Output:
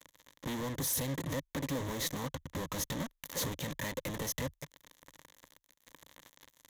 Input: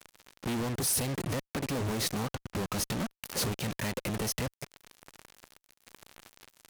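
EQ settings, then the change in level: ripple EQ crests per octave 1.1, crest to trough 8 dB; -4.5 dB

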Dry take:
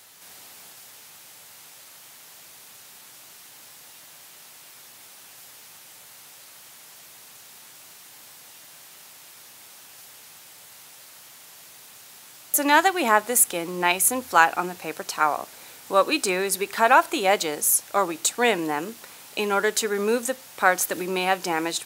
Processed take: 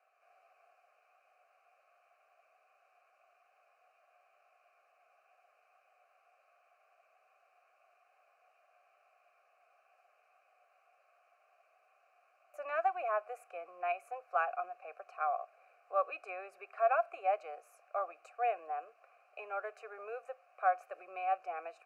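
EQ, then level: vowel filter a; three-band isolator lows -17 dB, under 470 Hz, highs -15 dB, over 3300 Hz; fixed phaser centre 930 Hz, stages 6; 0.0 dB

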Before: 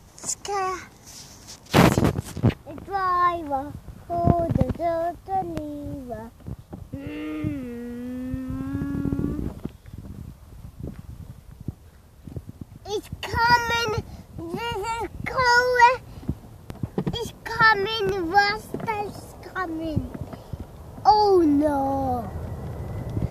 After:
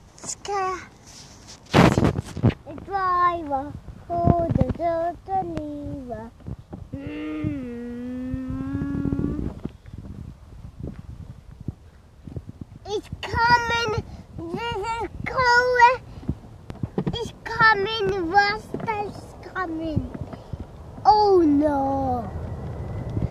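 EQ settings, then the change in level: air absorption 53 m; +1.0 dB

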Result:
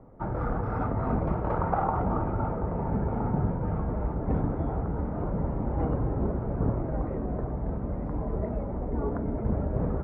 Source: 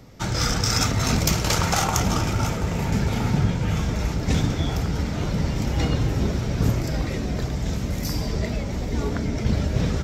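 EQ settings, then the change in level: LPF 1100 Hz 24 dB/oct; bell 110 Hz -7.5 dB 2.6 oct; 0.0 dB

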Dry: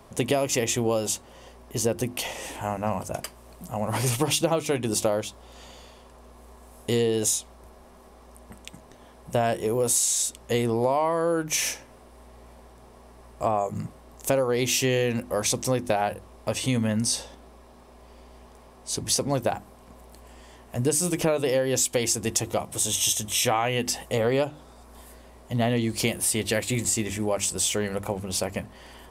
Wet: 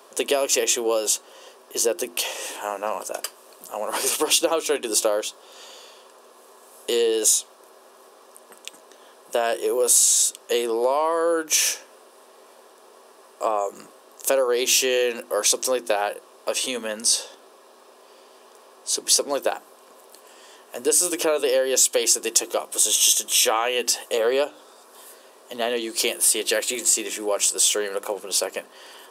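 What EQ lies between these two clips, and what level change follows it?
HPF 390 Hz 24 dB/oct; bell 740 Hz -7 dB 0.77 oct; bell 2100 Hz -11 dB 0.23 oct; +6.5 dB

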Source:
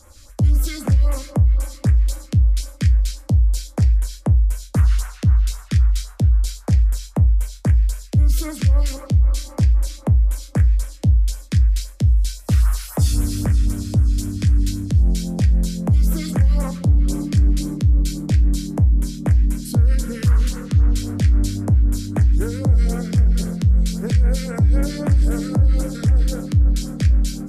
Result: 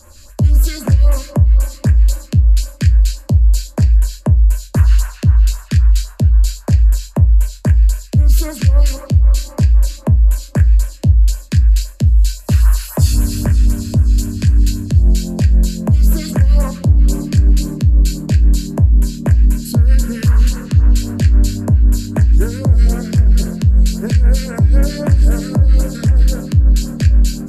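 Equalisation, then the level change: ripple EQ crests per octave 1.4, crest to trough 7 dB; +4.0 dB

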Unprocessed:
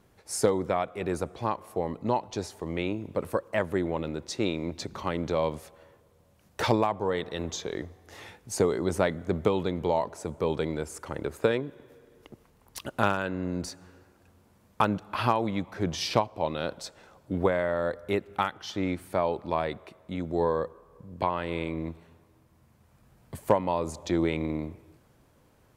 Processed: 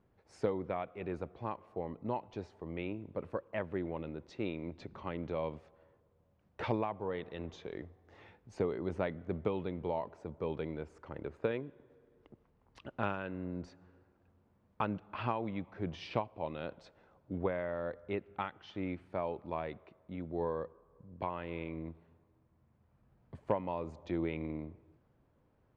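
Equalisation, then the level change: dynamic EQ 2600 Hz, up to +7 dB, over -51 dBFS, Q 1.7; tape spacing loss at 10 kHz 31 dB; -8.0 dB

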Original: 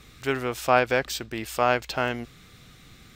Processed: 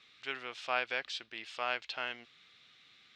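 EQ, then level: ladder low-pass 4300 Hz, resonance 30%; tilt +4 dB/oct; low shelf 87 Hz -9.5 dB; -7.0 dB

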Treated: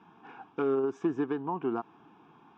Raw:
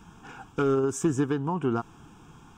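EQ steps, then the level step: speaker cabinet 320–4100 Hz, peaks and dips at 500 Hz -5 dB, 1400 Hz -6 dB, 3100 Hz -4 dB; high shelf 3100 Hz -12 dB; 0.0 dB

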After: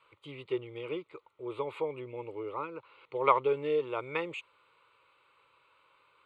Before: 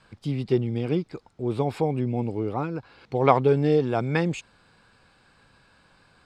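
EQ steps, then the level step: band-pass 1500 Hz, Q 0.66; fixed phaser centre 1100 Hz, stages 8; 0.0 dB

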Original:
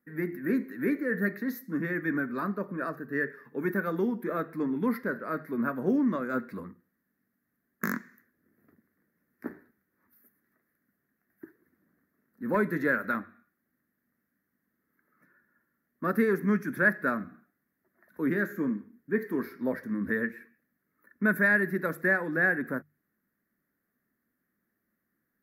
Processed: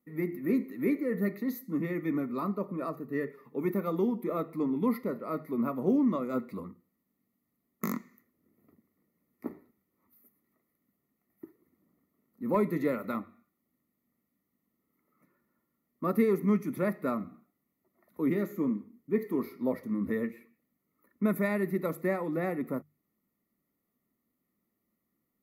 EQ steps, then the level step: Butterworth band-stop 1600 Hz, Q 2.2; notch 5400 Hz, Q 9.7; 0.0 dB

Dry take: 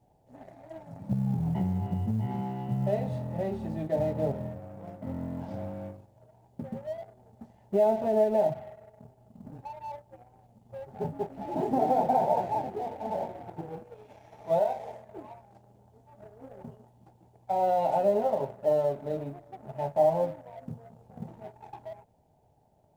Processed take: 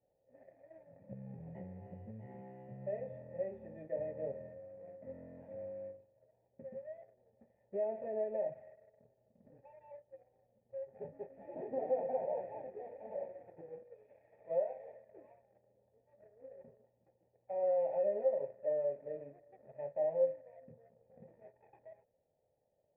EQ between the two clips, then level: vocal tract filter e; -1.0 dB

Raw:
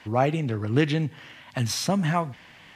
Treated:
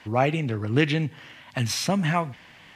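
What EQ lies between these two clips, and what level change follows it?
dynamic EQ 2400 Hz, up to +6 dB, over -44 dBFS, Q 1.8; 0.0 dB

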